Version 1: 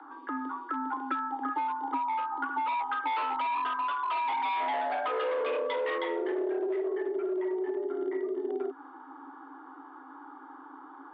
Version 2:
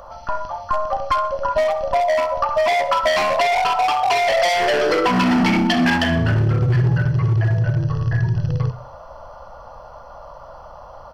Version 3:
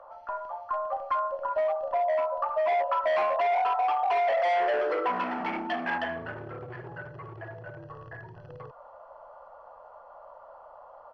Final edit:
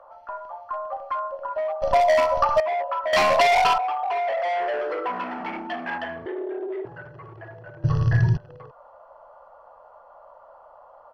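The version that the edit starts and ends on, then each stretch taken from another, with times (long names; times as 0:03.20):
3
0:01.82–0:02.60: punch in from 2
0:03.13–0:03.78: punch in from 2
0:06.26–0:06.85: punch in from 1
0:07.84–0:08.37: punch in from 2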